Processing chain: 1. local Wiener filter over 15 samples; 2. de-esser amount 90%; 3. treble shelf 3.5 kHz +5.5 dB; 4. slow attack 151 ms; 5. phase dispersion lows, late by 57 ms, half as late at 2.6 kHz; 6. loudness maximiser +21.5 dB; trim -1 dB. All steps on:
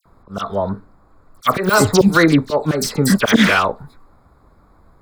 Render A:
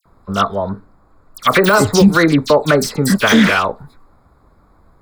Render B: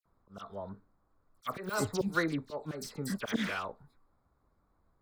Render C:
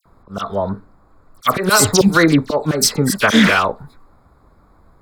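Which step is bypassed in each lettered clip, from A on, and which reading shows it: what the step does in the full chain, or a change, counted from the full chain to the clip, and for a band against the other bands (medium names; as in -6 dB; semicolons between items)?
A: 4, crest factor change -2.5 dB; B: 6, crest factor change +6.0 dB; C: 2, 8 kHz band +6.5 dB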